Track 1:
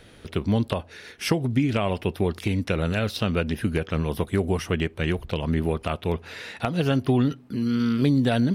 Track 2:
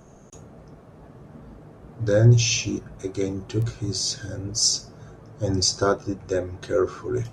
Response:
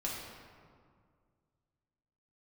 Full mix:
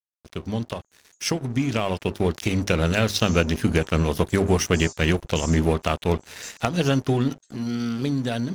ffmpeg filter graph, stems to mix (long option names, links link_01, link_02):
-filter_complex "[0:a]equalizer=frequency=6300:width_type=o:width=0.56:gain=12.5,bandreject=frequency=50:width_type=h:width=6,bandreject=frequency=100:width_type=h:width=6,bandreject=frequency=150:width_type=h:width=6,bandreject=frequency=200:width_type=h:width=6,bandreject=frequency=250:width_type=h:width=6,bandreject=frequency=300:width_type=h:width=6,bandreject=frequency=350:width_type=h:width=6,bandreject=frequency=400:width_type=h:width=6,aeval=exprs='sgn(val(0))*max(abs(val(0))-0.0126,0)':channel_layout=same,volume=-3.5dB[link_01];[1:a]acompressor=threshold=-27dB:ratio=6,bandpass=frequency=7300:width_type=q:width=6.8:csg=0,adelay=800,volume=-7.5dB[link_02];[link_01][link_02]amix=inputs=2:normalize=0,dynaudnorm=framelen=310:gausssize=13:maxgain=11dB"